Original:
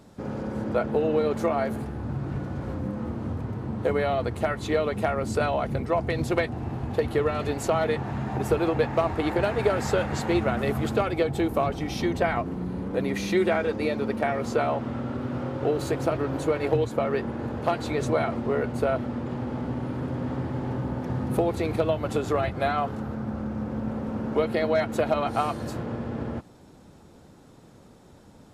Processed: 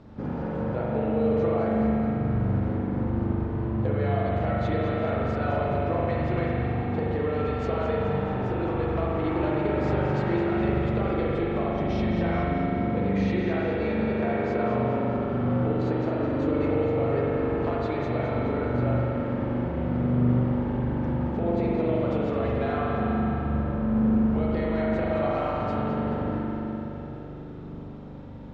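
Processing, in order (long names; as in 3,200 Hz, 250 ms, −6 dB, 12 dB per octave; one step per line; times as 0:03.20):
running median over 5 samples
low-shelf EQ 160 Hz +5 dB
downward compressor, threshold −29 dBFS, peak gain reduction 12.5 dB
high-frequency loss of the air 140 metres
echo with a time of its own for lows and highs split 400 Hz, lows 759 ms, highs 213 ms, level −9 dB
spring reverb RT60 3.4 s, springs 41 ms, chirp 60 ms, DRR −5 dB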